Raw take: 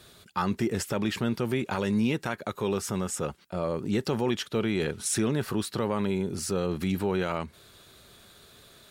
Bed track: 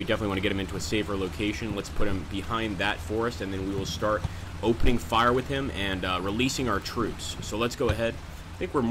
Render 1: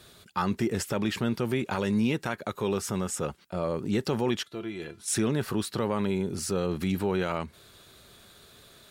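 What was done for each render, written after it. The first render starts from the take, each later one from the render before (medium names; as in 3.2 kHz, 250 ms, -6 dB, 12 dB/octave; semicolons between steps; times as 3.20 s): 4.43–5.08 s: feedback comb 340 Hz, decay 0.16 s, mix 80%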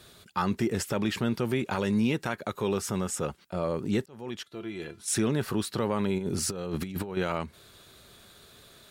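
4.06–4.79 s: fade in; 6.18–7.17 s: compressor with a negative ratio -31 dBFS, ratio -0.5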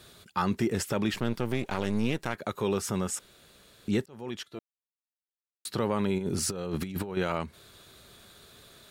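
1.14–2.35 s: partial rectifier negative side -12 dB; 3.19–3.88 s: room tone; 4.59–5.65 s: mute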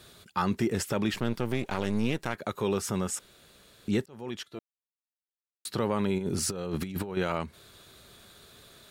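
no audible change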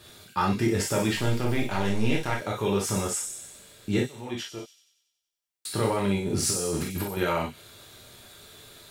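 feedback echo behind a high-pass 93 ms, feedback 57%, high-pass 5.5 kHz, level -4 dB; gated-style reverb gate 80 ms flat, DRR -2.5 dB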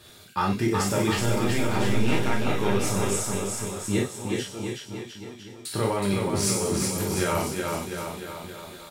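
bouncing-ball echo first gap 370 ms, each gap 0.9×, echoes 5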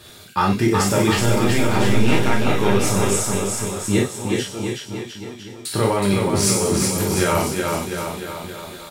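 trim +6.5 dB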